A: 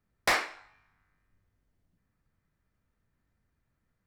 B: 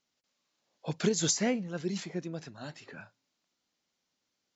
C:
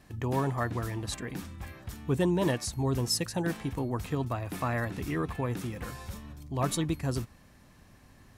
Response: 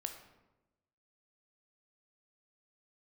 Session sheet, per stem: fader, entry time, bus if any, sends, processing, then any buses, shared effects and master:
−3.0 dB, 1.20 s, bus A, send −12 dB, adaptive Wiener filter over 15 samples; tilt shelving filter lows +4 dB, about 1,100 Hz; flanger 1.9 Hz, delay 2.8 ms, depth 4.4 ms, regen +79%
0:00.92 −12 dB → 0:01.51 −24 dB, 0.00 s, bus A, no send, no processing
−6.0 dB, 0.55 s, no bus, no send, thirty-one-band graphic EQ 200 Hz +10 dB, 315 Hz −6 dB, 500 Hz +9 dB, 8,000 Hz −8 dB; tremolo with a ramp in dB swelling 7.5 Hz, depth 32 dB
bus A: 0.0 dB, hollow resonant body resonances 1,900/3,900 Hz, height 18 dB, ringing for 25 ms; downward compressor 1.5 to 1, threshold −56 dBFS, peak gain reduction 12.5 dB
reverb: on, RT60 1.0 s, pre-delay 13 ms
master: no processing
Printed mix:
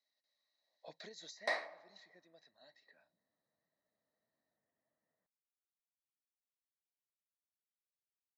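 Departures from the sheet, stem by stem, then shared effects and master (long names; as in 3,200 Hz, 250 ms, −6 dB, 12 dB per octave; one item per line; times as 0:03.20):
stem C: muted
master: extra loudspeaker in its box 370–8,800 Hz, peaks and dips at 380 Hz −5 dB, 630 Hz +10 dB, 1,400 Hz −7 dB, 2,900 Hz −6 dB, 4,300 Hz +5 dB, 7,300 Hz −9 dB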